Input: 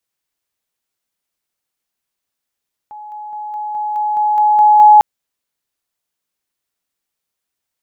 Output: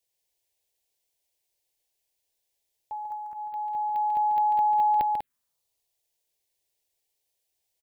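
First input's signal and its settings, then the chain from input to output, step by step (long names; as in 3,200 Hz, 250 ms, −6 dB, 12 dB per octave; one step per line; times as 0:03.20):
level staircase 844 Hz −29.5 dBFS, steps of 3 dB, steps 10, 0.21 s 0.00 s
downward compressor 6 to 1, threshold −14 dBFS
phaser swept by the level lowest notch 220 Hz, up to 1,200 Hz, full sweep at −24.5 dBFS
on a send: loudspeakers that aren't time-aligned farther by 49 metres −7 dB, 67 metres −7 dB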